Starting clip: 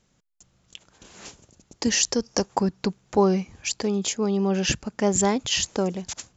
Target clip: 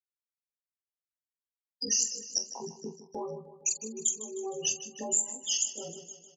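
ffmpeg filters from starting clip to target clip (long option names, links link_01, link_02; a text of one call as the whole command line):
ffmpeg -i in.wav -filter_complex "[0:a]afftfilt=real='re':imag='-im':win_size=2048:overlap=0.75,afftfilt=real='re*gte(hypot(re,im),0.0708)':imag='im*gte(hypot(re,im),0.0708)':win_size=1024:overlap=0.75,acrossover=split=110|2100[link_01][link_02][link_03];[link_02]alimiter=limit=-21.5dB:level=0:latency=1:release=27[link_04];[link_01][link_04][link_03]amix=inputs=3:normalize=0,highpass=78,bass=frequency=250:gain=-8,treble=frequency=4000:gain=-1,agate=range=-18dB:threshold=-45dB:ratio=16:detection=peak,aexciter=amount=9.9:drive=3.2:freq=3200,acompressor=threshold=-30dB:ratio=5,highshelf=frequency=4600:gain=8.5,asplit=2[link_05][link_06];[link_06]adelay=45,volume=-11.5dB[link_07];[link_05][link_07]amix=inputs=2:normalize=0,aecho=1:1:154|308|462|616|770|924:0.2|0.116|0.0671|0.0389|0.0226|0.0131,volume=-4dB" out.wav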